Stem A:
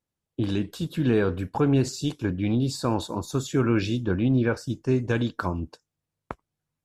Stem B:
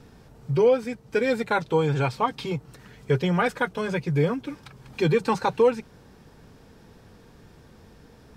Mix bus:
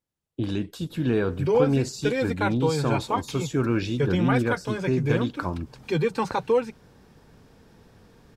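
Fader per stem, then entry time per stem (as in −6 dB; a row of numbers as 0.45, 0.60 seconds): −1.5, −2.5 decibels; 0.00, 0.90 seconds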